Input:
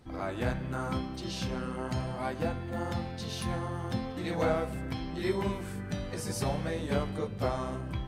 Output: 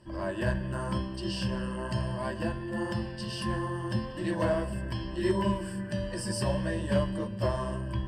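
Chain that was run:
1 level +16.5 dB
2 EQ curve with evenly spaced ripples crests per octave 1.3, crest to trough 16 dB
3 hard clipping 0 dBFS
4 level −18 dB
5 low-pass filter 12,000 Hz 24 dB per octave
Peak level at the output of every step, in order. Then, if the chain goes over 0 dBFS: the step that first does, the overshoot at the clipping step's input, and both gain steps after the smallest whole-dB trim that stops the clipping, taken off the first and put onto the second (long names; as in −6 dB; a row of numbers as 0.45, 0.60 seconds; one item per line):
+1.0, +4.0, 0.0, −18.0, −18.0 dBFS
step 1, 4.0 dB
step 1 +12.5 dB, step 4 −14 dB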